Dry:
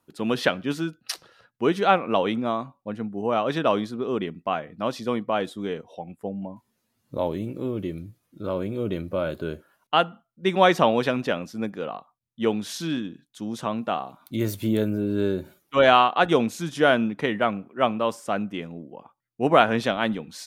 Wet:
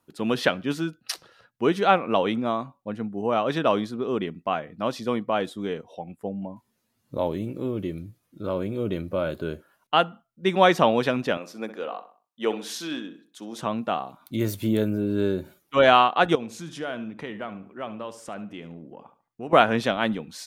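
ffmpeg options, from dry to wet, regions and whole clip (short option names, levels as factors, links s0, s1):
-filter_complex "[0:a]asettb=1/sr,asplit=3[s0][s1][s2];[s0]atrim=end=11.374[s3];[s1]atrim=start=11.37:end=13.62,asetpts=PTS-STARTPTS,afade=t=in:d=0.004:c=qsin,afade=t=out:st=2.246:d=0.004:c=qsin,highpass=350,asplit=2[s4][s5];[s5]adelay=63,lowpass=f=3100:p=1,volume=0.251,asplit=2[s6][s7];[s7]adelay=63,lowpass=f=3100:p=1,volume=0.41,asplit=2[s8][s9];[s9]adelay=63,lowpass=f=3100:p=1,volume=0.41,asplit=2[s10][s11];[s11]adelay=63,lowpass=f=3100:p=1,volume=0.41[s12];[s4][s6][s8][s10][s12]amix=inputs=5:normalize=0,atrim=end_sample=99225[s13];[s2]atrim=start=13.616[s14];[s3][s13]acrossfade=d=0.004:c1=hsin:c2=qsin[s15];[s15][s14]acrossfade=d=0.004:c1=qsin:c2=hsin,asettb=1/sr,asplit=3[s16][s17][s18];[s16]atrim=end=16.354[s19];[s17]atrim=start=16.35:end=19.53,asetpts=PTS-STARTPTS,afade=t=in:d=0.004:c=qsin,afade=t=out:st=3.176:d=0.004:c=qsin,equalizer=f=13000:t=o:w=0.57:g=-6,acompressor=threshold=0.0112:ratio=2:attack=3.2:release=140:knee=1:detection=peak,asplit=2[s20][s21];[s21]adelay=72,lowpass=f=3800:p=1,volume=0.224,asplit=2[s22][s23];[s23]adelay=72,lowpass=f=3800:p=1,volume=0.32,asplit=2[s24][s25];[s25]adelay=72,lowpass=f=3800:p=1,volume=0.32[s26];[s20][s22][s24][s26]amix=inputs=4:normalize=0,atrim=end_sample=140238[s27];[s18]atrim=start=19.526[s28];[s19][s27]acrossfade=d=0.004:c1=hsin:c2=qsin[s29];[s29][s28]acrossfade=d=0.004:c1=qsin:c2=hsin"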